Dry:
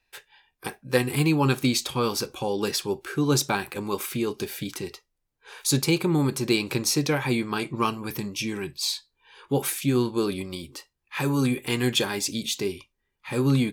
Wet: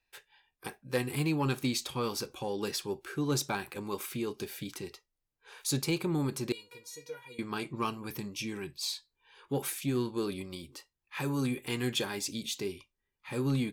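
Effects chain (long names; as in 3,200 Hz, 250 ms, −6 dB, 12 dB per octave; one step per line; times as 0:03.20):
0:06.52–0:07.39: tuned comb filter 480 Hz, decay 0.16 s, harmonics all, mix 100%
soft clipping −11.5 dBFS, distortion −25 dB
level −7.5 dB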